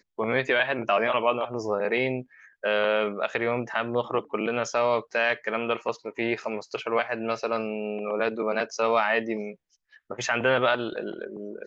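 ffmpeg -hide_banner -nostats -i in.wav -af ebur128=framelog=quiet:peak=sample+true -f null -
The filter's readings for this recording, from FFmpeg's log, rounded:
Integrated loudness:
  I:         -26.6 LUFS
  Threshold: -36.9 LUFS
Loudness range:
  LRA:         2.7 LU
  Threshold: -47.2 LUFS
  LRA low:   -28.5 LUFS
  LRA high:  -25.8 LUFS
Sample peak:
  Peak:       -9.0 dBFS
True peak:
  Peak:       -8.9 dBFS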